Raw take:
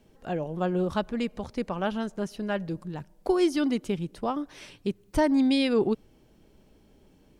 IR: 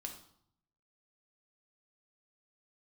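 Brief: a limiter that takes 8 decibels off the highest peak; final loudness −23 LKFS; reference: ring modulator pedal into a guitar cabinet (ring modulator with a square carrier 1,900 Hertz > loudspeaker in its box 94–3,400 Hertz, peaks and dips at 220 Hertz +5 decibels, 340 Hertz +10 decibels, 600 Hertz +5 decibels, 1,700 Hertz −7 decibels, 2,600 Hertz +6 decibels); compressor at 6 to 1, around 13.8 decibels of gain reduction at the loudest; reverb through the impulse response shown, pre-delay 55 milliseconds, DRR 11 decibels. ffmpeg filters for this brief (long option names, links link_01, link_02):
-filter_complex "[0:a]acompressor=threshold=-34dB:ratio=6,alimiter=level_in=7dB:limit=-24dB:level=0:latency=1,volume=-7dB,asplit=2[link_01][link_02];[1:a]atrim=start_sample=2205,adelay=55[link_03];[link_02][link_03]afir=irnorm=-1:irlink=0,volume=-8dB[link_04];[link_01][link_04]amix=inputs=2:normalize=0,aeval=exprs='val(0)*sgn(sin(2*PI*1900*n/s))':channel_layout=same,highpass=94,equalizer=frequency=220:width_type=q:width=4:gain=5,equalizer=frequency=340:width_type=q:width=4:gain=10,equalizer=frequency=600:width_type=q:width=4:gain=5,equalizer=frequency=1700:width_type=q:width=4:gain=-7,equalizer=frequency=2600:width_type=q:width=4:gain=6,lowpass=frequency=3400:width=0.5412,lowpass=frequency=3400:width=1.3066,volume=15.5dB"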